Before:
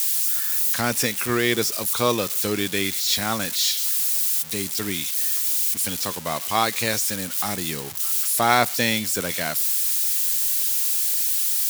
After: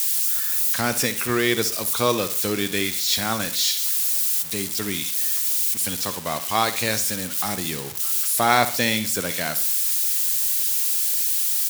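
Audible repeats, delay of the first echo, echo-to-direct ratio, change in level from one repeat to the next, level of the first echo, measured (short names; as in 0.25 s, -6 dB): 3, 64 ms, -12.5 dB, -8.0 dB, -13.0 dB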